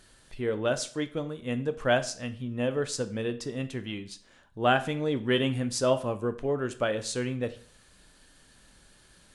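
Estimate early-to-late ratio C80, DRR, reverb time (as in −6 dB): 19.0 dB, 10.0 dB, 0.50 s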